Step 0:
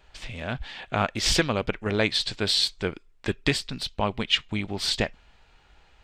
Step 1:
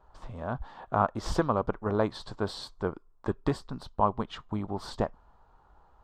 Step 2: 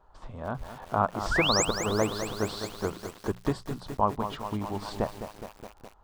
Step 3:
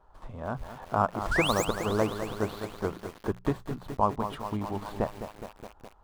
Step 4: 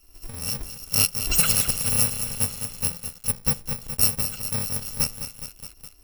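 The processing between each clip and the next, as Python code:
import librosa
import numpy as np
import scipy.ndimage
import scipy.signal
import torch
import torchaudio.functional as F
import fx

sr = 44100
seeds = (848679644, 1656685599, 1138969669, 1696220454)

y1 = fx.high_shelf_res(x, sr, hz=1600.0, db=-13.5, q=3.0)
y1 = y1 * librosa.db_to_amplitude(-3.0)
y2 = fx.spec_paint(y1, sr, seeds[0], shape='rise', start_s=1.31, length_s=0.34, low_hz=1300.0, high_hz=8400.0, level_db=-27.0)
y2 = fx.hum_notches(y2, sr, base_hz=60, count=3)
y2 = fx.echo_crushed(y2, sr, ms=209, feedback_pct=80, bits=7, wet_db=-9.0)
y3 = scipy.ndimage.median_filter(y2, 9, mode='constant')
y4 = fx.bit_reversed(y3, sr, seeds[1], block=128)
y4 = y4 * librosa.db_to_amplitude(5.0)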